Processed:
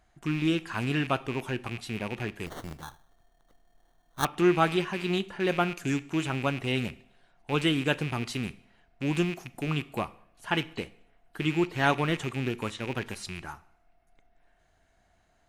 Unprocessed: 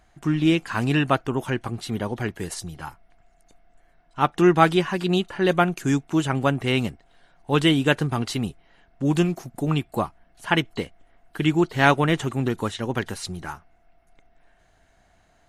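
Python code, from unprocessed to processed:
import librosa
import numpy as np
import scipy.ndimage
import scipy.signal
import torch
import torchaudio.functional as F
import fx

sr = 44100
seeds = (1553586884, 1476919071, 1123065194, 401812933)

y = fx.rattle_buzz(x, sr, strikes_db=-34.0, level_db=-20.0)
y = fx.rev_double_slope(y, sr, seeds[0], early_s=0.6, late_s=1.6, knee_db=-23, drr_db=15.0)
y = fx.sample_hold(y, sr, seeds[1], rate_hz=2500.0, jitter_pct=0, at=(2.46, 4.25))
y = y * librosa.db_to_amplitude(-7.0)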